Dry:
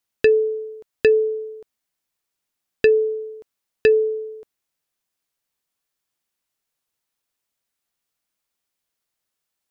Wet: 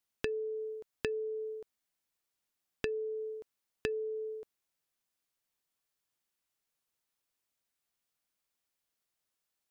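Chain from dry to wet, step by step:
downward compressor 12 to 1, threshold −28 dBFS, peak gain reduction 17 dB
level −5 dB

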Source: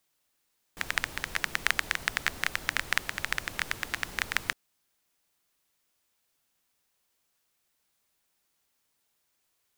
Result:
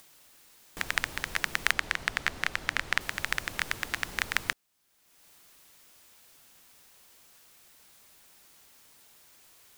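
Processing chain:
0:01.72–0:03.01: high-shelf EQ 8,100 Hz −11 dB
in parallel at −2 dB: upward compression, threshold −32 dBFS
on the sum: level −4.5 dB

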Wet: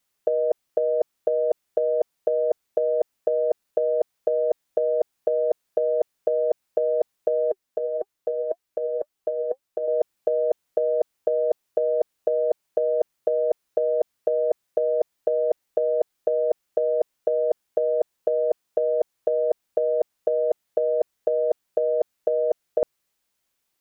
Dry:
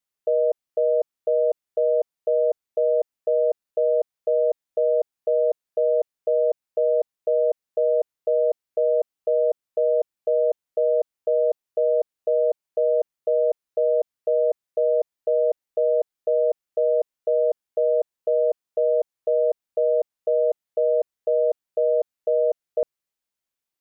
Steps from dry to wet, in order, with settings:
compressor whose output falls as the input rises −24 dBFS, ratio −0.5
0:07.51–0:09.88: flanger 1.8 Hz, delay 2.3 ms, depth 2.3 ms, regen +68%
level +4.5 dB

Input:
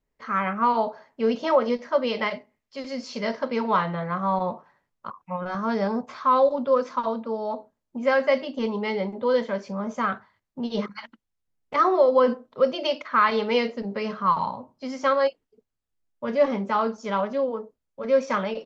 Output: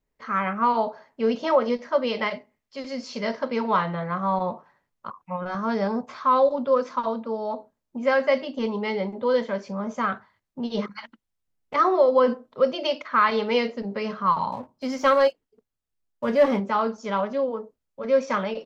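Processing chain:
0:14.52–0:16.60: leveller curve on the samples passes 1

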